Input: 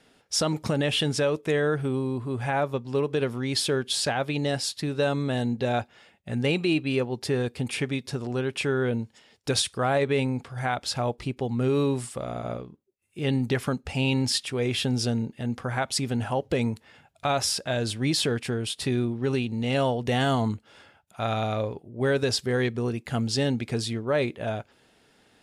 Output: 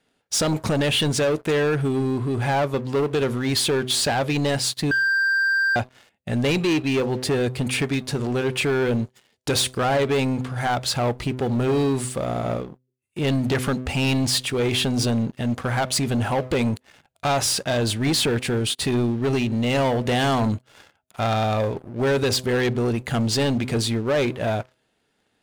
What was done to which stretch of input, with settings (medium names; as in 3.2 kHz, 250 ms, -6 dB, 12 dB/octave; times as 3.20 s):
4.91–5.76 s: bleep 1.58 kHz -23 dBFS
whole clip: band-stop 5.3 kHz; de-hum 127.6 Hz, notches 5; waveshaping leveller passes 3; trim -3 dB